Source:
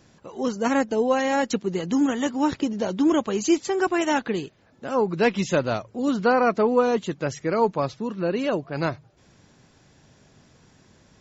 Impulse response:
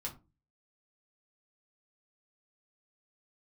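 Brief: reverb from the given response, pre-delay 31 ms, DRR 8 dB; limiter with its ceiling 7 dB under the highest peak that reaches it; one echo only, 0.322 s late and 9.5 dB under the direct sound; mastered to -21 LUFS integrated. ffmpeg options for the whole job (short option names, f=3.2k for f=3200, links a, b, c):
-filter_complex "[0:a]alimiter=limit=-15.5dB:level=0:latency=1,aecho=1:1:322:0.335,asplit=2[a][b];[1:a]atrim=start_sample=2205,adelay=31[c];[b][c]afir=irnorm=-1:irlink=0,volume=-7.5dB[d];[a][d]amix=inputs=2:normalize=0,volume=3.5dB"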